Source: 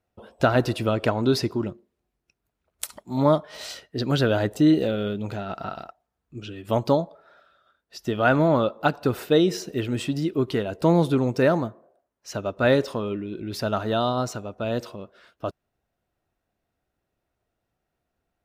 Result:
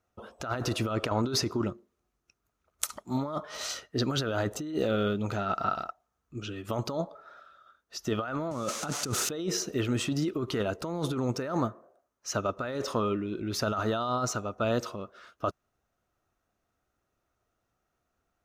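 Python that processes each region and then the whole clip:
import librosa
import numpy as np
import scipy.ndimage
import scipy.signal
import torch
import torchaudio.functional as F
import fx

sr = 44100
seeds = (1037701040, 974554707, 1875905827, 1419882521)

y = fx.chain(x, sr, fx.crossing_spikes(level_db=-19.5),
    fx.cheby1_bandpass(low_hz=140.0, high_hz=7600.0, order=2),
    fx.low_shelf(hz=280.0, db=9.0), at=(8.51, 9.29))
y = fx.graphic_eq_31(y, sr, hz=(160, 1250, 6300), db=(-3, 10, 8))
y = fx.over_compress(y, sr, threshold_db=-25.0, ratio=-1.0)
y = F.gain(torch.from_numpy(y), -4.5).numpy()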